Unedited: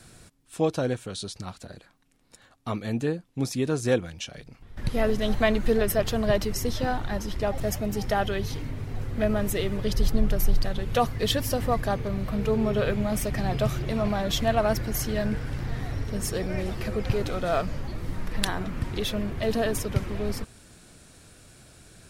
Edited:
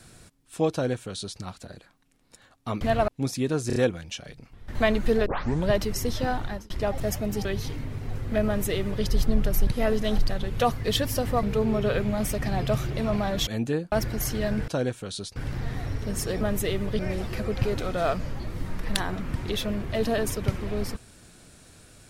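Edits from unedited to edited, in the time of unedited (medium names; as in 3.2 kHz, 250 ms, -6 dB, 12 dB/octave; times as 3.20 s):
0.72–1.40 s: copy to 15.42 s
2.81–3.26 s: swap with 14.39–14.66 s
3.85 s: stutter 0.03 s, 4 plays
4.84–5.35 s: move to 10.53 s
5.86 s: tape start 0.44 s
7.04–7.30 s: fade out
8.05–8.31 s: delete
9.32–9.90 s: copy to 16.47 s
11.78–12.35 s: delete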